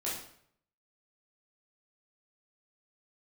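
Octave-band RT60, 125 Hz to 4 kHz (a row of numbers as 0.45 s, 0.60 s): 0.80 s, 0.65 s, 0.65 s, 0.60 s, 0.60 s, 0.55 s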